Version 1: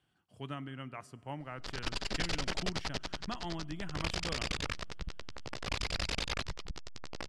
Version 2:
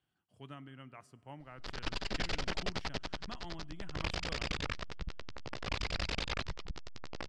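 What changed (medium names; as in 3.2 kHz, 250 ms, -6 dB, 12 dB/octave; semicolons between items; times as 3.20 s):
speech -7.5 dB; background: add distance through air 78 m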